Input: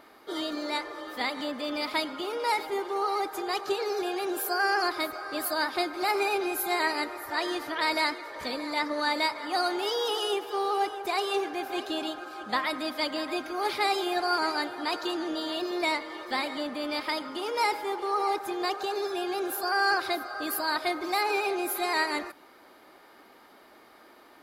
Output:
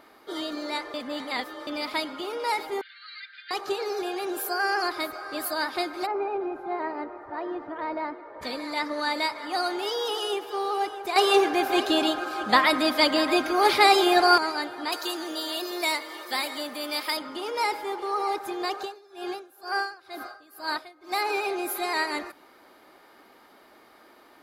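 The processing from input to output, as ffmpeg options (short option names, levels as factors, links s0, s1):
-filter_complex "[0:a]asettb=1/sr,asplit=3[s0][s1][s2];[s0]atrim=end=2.814[s3];[s1]atrim=start=2.81:end=3.51,asetpts=PTS-STARTPTS,afade=t=in:d=0.004:c=qsin,afade=t=out:st=0.696:d=0.004:c=qsin,asuperpass=centerf=2600:order=20:qfactor=0.82[s4];[s2]atrim=start=3.506[s5];[s3][s4]acrossfade=d=0.004:c1=hsin:c2=qsin[s6];[s6][s5]acrossfade=d=0.004:c1=qsin:c2=hsin,asplit=3[s7][s8][s9];[s7]afade=t=out:st=6.05:d=0.02[s10];[s8]lowpass=1000,afade=t=in:st=6.05:d=0.02,afade=t=out:st=8.41:d=0.02[s11];[s9]afade=t=in:st=8.41:d=0.02[s12];[s10][s11][s12]amix=inputs=3:normalize=0,asettb=1/sr,asplit=3[s13][s14][s15];[s13]atrim=end=14.924[s16];[s14]atrim=start=14.92:end=17.17,asetpts=PTS-STARTPTS,afade=t=in:d=0.004:c=qsin,afade=t=out:st=2.246:d=0.004:c=qsin,aemphasis=mode=production:type=bsi[s17];[s15]atrim=start=17.166[s18];[s16][s17]acrossfade=d=0.004:c1=hsin:c2=qsin[s19];[s19][s18]acrossfade=d=0.004:c1=qsin:c2=hsin,asettb=1/sr,asplit=3[s20][s21][s22];[s20]atrim=end=18.814[s23];[s21]atrim=start=18.81:end=21.12,asetpts=PTS-STARTPTS,afade=t=in:d=0.004:c=qsin,afade=t=out:st=2.306:d=0.004:c=qsin,aeval=exprs='val(0)*pow(10,-24*(0.5-0.5*cos(2*PI*2.1*n/s))/20)':c=same[s24];[s22]atrim=start=21.116[s25];[s23][s24]acrossfade=d=0.004:c1=hsin:c2=qsin[s26];[s26][s25]acrossfade=d=0.004:c1=qsin:c2=hsin,asplit=5[s27][s28][s29][s30][s31];[s27]atrim=end=0.942[s32];[s28]atrim=start=0.938:end=1.672,asetpts=PTS-STARTPTS,areverse[s33];[s29]atrim=start=1.668:end=11.162[s34];[s30]atrim=start=11.158:end=14.382,asetpts=PTS-STARTPTS,volume=2.82[s35];[s31]atrim=start=14.378[s36];[s32][s33]acrossfade=d=0.004:c1=hsin:c2=hsin[s37];[s37][s34]acrossfade=d=0.004:c1=hsin:c2=hsin[s38];[s38][s35]acrossfade=d=0.004:c1=hsin:c2=hsin[s39];[s39][s36]acrossfade=d=0.004:c1=hsin:c2=hsin"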